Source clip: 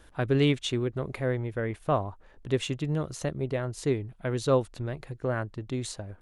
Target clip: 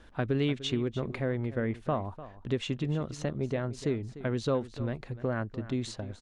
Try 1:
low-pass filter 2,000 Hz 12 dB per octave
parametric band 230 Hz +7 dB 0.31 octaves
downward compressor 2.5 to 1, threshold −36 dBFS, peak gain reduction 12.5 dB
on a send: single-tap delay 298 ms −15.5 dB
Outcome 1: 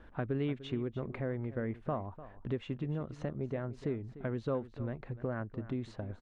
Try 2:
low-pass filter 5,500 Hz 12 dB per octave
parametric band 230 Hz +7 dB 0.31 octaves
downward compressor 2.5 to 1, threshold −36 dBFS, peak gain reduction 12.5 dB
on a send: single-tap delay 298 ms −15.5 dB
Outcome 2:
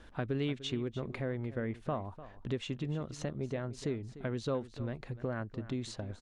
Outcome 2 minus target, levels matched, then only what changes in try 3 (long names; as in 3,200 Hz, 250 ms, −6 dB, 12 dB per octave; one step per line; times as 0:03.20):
downward compressor: peak gain reduction +5.5 dB
change: downward compressor 2.5 to 1, threshold −27 dBFS, peak gain reduction 7 dB